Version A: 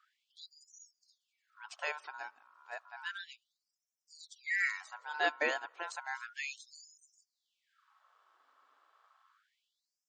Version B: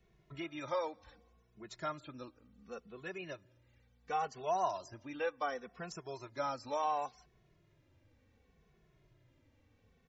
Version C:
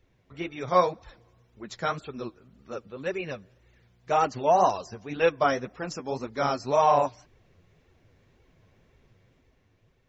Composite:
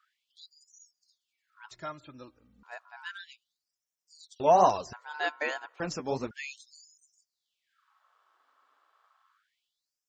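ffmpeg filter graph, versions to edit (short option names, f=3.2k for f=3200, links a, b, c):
-filter_complex "[2:a]asplit=2[a][b];[0:a]asplit=4[c][d][e][f];[c]atrim=end=1.712[g];[1:a]atrim=start=1.708:end=2.632[h];[d]atrim=start=2.628:end=4.402[i];[a]atrim=start=4.398:end=4.932[j];[e]atrim=start=4.928:end=5.802[k];[b]atrim=start=5.798:end=6.312[l];[f]atrim=start=6.308[m];[g][h]acrossfade=d=0.004:c1=hsin:c2=hsin[n];[n][i]acrossfade=d=0.004:c1=hsin:c2=hsin[o];[o][j]acrossfade=d=0.004:c1=hsin:c2=hsin[p];[p][k]acrossfade=d=0.004:c1=hsin:c2=hsin[q];[q][l]acrossfade=d=0.004:c1=hsin:c2=hsin[r];[r][m]acrossfade=d=0.004:c1=hsin:c2=hsin"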